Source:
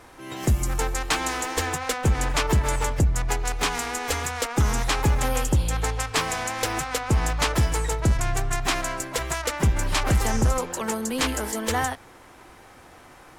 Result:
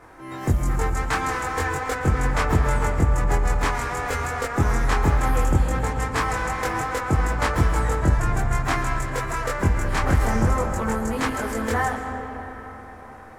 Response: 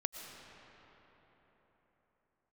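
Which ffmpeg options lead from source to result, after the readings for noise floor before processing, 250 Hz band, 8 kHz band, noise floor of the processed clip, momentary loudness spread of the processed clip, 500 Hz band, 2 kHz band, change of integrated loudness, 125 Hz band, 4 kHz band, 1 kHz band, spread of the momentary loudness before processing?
-49 dBFS, +2.5 dB, -7.0 dB, -41 dBFS, 6 LU, +2.0 dB, +2.0 dB, +1.5 dB, +2.0 dB, -7.5 dB, +3.0 dB, 5 LU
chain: -filter_complex "[0:a]highshelf=f=2300:t=q:w=1.5:g=-7.5,asplit=2[s0][s1];[1:a]atrim=start_sample=2205,adelay=22[s2];[s1][s2]afir=irnorm=-1:irlink=0,volume=1.12[s3];[s0][s3]amix=inputs=2:normalize=0,volume=0.794"

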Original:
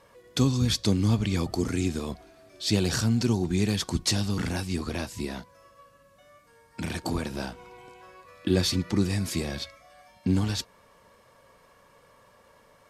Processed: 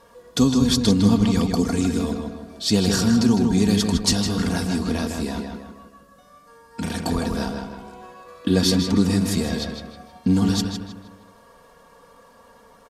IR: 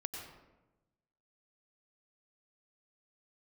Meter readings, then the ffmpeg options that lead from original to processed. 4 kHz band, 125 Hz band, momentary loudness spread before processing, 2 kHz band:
+5.5 dB, +3.5 dB, 13 LU, +4.0 dB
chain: -filter_complex "[0:a]equalizer=f=2300:w=2.2:g=-6.5,aecho=1:1:4.3:0.55,asplit=2[s0][s1];[s1]adelay=157,lowpass=f=3400:p=1,volume=0.631,asplit=2[s2][s3];[s3]adelay=157,lowpass=f=3400:p=1,volume=0.45,asplit=2[s4][s5];[s5]adelay=157,lowpass=f=3400:p=1,volume=0.45,asplit=2[s6][s7];[s7]adelay=157,lowpass=f=3400:p=1,volume=0.45,asplit=2[s8][s9];[s9]adelay=157,lowpass=f=3400:p=1,volume=0.45,asplit=2[s10][s11];[s11]adelay=157,lowpass=f=3400:p=1,volume=0.45[s12];[s2][s4][s6][s8][s10][s12]amix=inputs=6:normalize=0[s13];[s0][s13]amix=inputs=2:normalize=0,volume=1.68"

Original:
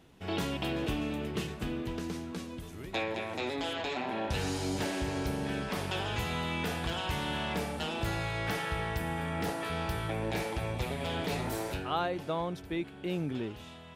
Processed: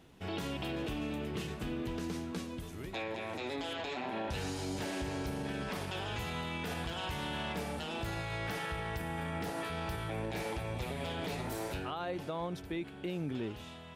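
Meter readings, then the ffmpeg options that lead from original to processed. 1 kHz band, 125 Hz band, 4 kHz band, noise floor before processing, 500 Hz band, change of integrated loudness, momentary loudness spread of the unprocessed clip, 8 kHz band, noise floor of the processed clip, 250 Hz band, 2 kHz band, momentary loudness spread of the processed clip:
-4.0 dB, -4.0 dB, -4.0 dB, -48 dBFS, -4.0 dB, -4.0 dB, 4 LU, -4.0 dB, -48 dBFS, -3.5 dB, -4.0 dB, 2 LU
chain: -af "alimiter=level_in=1.78:limit=0.0631:level=0:latency=1:release=72,volume=0.562"

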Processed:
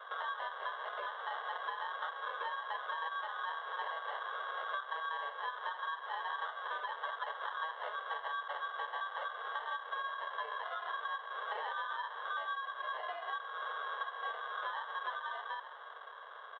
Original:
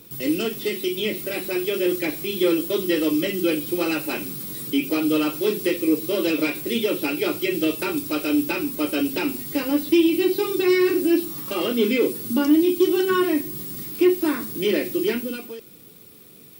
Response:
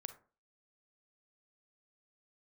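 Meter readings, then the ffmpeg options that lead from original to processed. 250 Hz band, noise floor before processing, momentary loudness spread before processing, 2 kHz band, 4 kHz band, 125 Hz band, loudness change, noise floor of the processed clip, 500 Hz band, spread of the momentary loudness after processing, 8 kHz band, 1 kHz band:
under -40 dB, -47 dBFS, 7 LU, -8.5 dB, -16.0 dB, under -40 dB, -17.5 dB, -50 dBFS, -26.5 dB, 2 LU, under -40 dB, -1.0 dB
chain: -filter_complex "[0:a]afftfilt=real='real(if(lt(b,960),b+48*(1-2*mod(floor(b/48),2)),b),0)':imag='imag(if(lt(b,960),b+48*(1-2*mod(floor(b/48),2)),b),0)':win_size=2048:overlap=0.75,bandreject=f=1400:w=16,acompressor=threshold=0.02:ratio=12,asplit=4[s0][s1][s2][s3];[s1]adelay=132,afreqshift=69,volume=0.158[s4];[s2]adelay=264,afreqshift=138,volume=0.0589[s5];[s3]adelay=396,afreqshift=207,volume=0.0216[s6];[s0][s4][s5][s6]amix=inputs=4:normalize=0,acrusher=samples=20:mix=1:aa=0.000001,highpass=f=190:t=q:w=0.5412,highpass=f=190:t=q:w=1.307,lowpass=f=3000:t=q:w=0.5176,lowpass=f=3000:t=q:w=0.7071,lowpass=f=3000:t=q:w=1.932,afreqshift=260,volume=0.794"

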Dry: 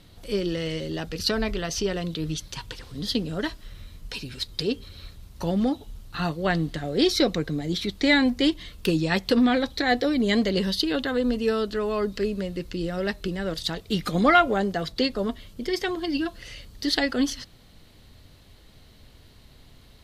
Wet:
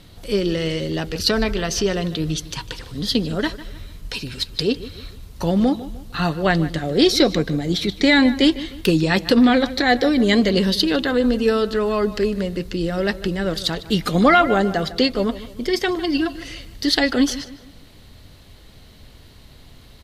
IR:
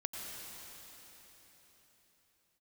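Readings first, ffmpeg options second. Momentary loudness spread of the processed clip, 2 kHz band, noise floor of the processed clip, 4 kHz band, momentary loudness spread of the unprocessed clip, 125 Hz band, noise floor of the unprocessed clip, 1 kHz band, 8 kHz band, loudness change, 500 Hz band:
13 LU, +5.5 dB, -45 dBFS, +6.0 dB, 13 LU, +6.0 dB, -52 dBFS, +5.0 dB, +6.0 dB, +6.0 dB, +6.0 dB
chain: -filter_complex "[0:a]asplit=2[s0][s1];[s1]adelay=152,lowpass=f=4000:p=1,volume=0.168,asplit=2[s2][s3];[s3]adelay=152,lowpass=f=4000:p=1,volume=0.4,asplit=2[s4][s5];[s5]adelay=152,lowpass=f=4000:p=1,volume=0.4,asplit=2[s6][s7];[s7]adelay=152,lowpass=f=4000:p=1,volume=0.4[s8];[s2][s4][s6][s8]amix=inputs=4:normalize=0[s9];[s0][s9]amix=inputs=2:normalize=0,alimiter=level_in=2.82:limit=0.891:release=50:level=0:latency=1,volume=0.708"

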